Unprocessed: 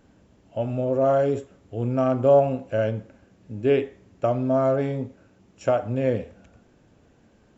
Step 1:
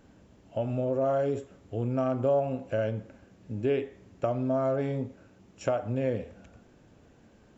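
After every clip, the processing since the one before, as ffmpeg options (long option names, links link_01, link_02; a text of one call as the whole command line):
ffmpeg -i in.wav -af "acompressor=threshold=-29dB:ratio=2" out.wav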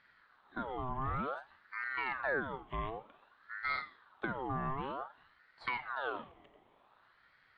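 ffmpeg -i in.wav -af "highshelf=frequency=3900:width_type=q:width=3:gain=-13.5,aeval=exprs='val(0)*sin(2*PI*1100*n/s+1100*0.55/0.54*sin(2*PI*0.54*n/s))':channel_layout=same,volume=-7dB" out.wav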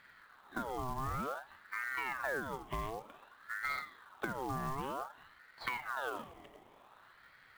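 ffmpeg -i in.wav -af "acompressor=threshold=-44dB:ratio=2.5,acrusher=bits=4:mode=log:mix=0:aa=0.000001,volume=6dB" out.wav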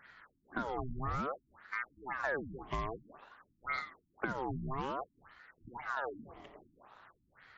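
ffmpeg -i in.wav -af "afftfilt=real='re*lt(b*sr/1024,310*pow(7600/310,0.5+0.5*sin(2*PI*1.9*pts/sr)))':imag='im*lt(b*sr/1024,310*pow(7600/310,0.5+0.5*sin(2*PI*1.9*pts/sr)))':win_size=1024:overlap=0.75,volume=2dB" out.wav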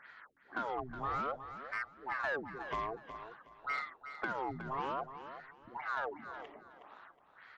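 ffmpeg -i in.wav -filter_complex "[0:a]asplit=2[link_01][link_02];[link_02]highpass=frequency=720:poles=1,volume=16dB,asoftclip=type=tanh:threshold=-18.5dB[link_03];[link_01][link_03]amix=inputs=2:normalize=0,lowpass=frequency=2200:poles=1,volume=-6dB,asplit=2[link_04][link_05];[link_05]aecho=0:1:367|734|1101:0.282|0.0705|0.0176[link_06];[link_04][link_06]amix=inputs=2:normalize=0,volume=-5.5dB" out.wav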